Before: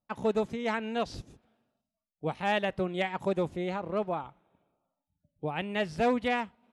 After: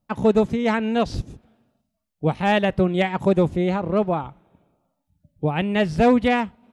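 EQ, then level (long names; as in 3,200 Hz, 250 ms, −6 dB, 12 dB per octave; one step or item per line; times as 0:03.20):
low-shelf EQ 300 Hz +9.5 dB
+7.0 dB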